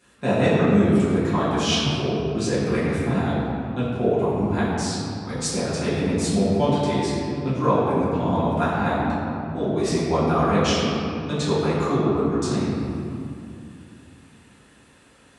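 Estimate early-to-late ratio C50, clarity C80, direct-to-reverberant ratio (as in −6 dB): −2.0 dB, −1.0 dB, −12.5 dB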